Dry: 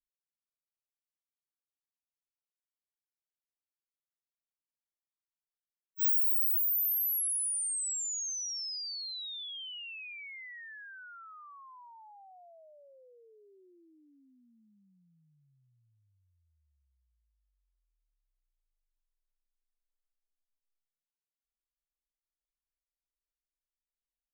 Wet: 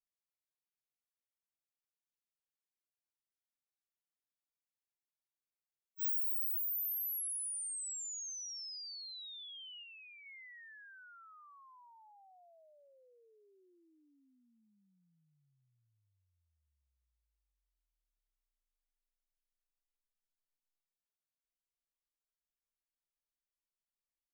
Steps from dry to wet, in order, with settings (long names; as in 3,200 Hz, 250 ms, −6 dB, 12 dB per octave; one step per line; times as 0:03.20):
0:09.83–0:10.26: guitar amp tone stack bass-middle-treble 10-0-10
level −7.5 dB